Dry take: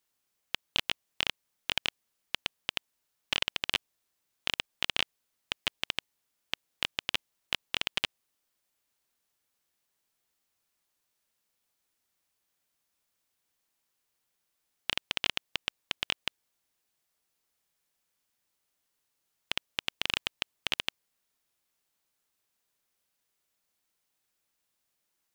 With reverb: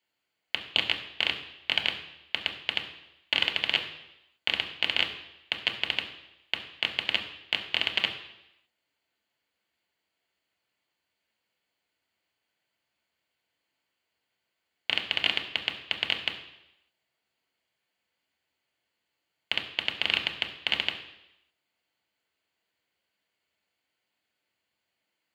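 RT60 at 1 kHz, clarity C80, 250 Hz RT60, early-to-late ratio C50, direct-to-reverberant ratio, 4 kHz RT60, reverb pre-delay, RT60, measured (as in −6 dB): 0.85 s, 11.5 dB, 0.85 s, 9.5 dB, 2.5 dB, 0.90 s, 3 ms, 0.85 s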